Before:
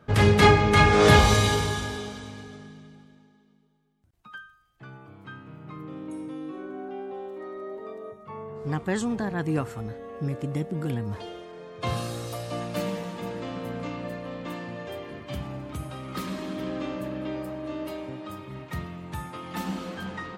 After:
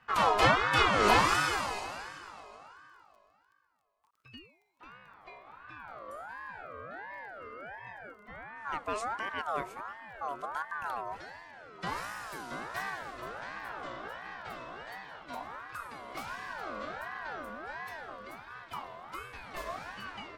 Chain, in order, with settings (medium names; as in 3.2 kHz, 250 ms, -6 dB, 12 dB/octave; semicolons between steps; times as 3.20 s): crackle 19 per s -48 dBFS; ring modulator with a swept carrier 1.1 kHz, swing 25%, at 1.4 Hz; trim -5 dB